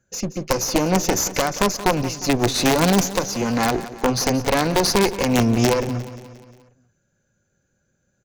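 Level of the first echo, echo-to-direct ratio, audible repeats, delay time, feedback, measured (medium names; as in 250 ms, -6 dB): -15.0 dB, -13.5 dB, 4, 177 ms, 55%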